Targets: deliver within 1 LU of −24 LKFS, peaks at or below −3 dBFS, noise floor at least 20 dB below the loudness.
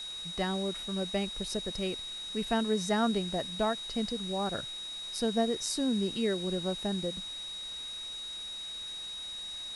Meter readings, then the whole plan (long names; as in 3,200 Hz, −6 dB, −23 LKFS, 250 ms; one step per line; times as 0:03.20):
interfering tone 3,800 Hz; level of the tone −38 dBFS; background noise floor −41 dBFS; target noise floor −53 dBFS; integrated loudness −33.0 LKFS; sample peak −16.5 dBFS; target loudness −24.0 LKFS
→ notch filter 3,800 Hz, Q 30
noise reduction from a noise print 12 dB
level +9 dB